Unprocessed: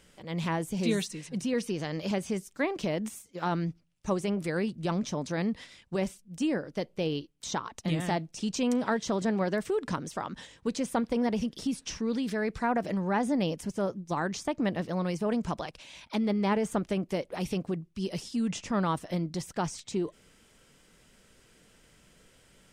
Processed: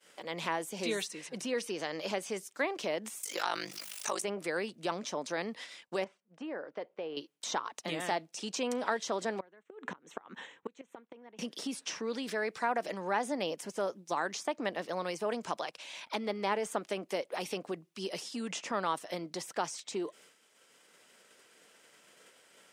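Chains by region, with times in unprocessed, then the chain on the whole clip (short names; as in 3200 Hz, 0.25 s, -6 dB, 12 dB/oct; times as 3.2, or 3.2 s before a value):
3.23–4.22 tilt +4.5 dB/oct + ring modulator 25 Hz + fast leveller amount 70%
6.04–7.17 low shelf 360 Hz -9 dB + compressor 3:1, threshold -34 dBFS + LPF 1400 Hz
9.4–11.39 running mean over 9 samples + bell 610 Hz -7 dB 0.38 oct + flipped gate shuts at -23 dBFS, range -26 dB
whole clip: expander -52 dBFS; HPF 450 Hz 12 dB/oct; three-band squash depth 40%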